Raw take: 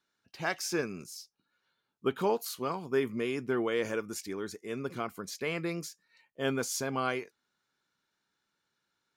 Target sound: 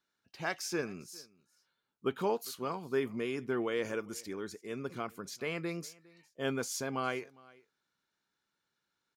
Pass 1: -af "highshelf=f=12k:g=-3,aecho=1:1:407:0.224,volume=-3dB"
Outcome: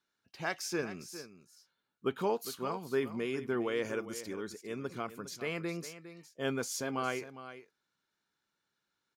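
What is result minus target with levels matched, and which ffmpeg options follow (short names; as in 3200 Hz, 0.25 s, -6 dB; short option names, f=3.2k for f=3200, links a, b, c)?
echo-to-direct +11 dB
-af "highshelf=f=12k:g=-3,aecho=1:1:407:0.0631,volume=-3dB"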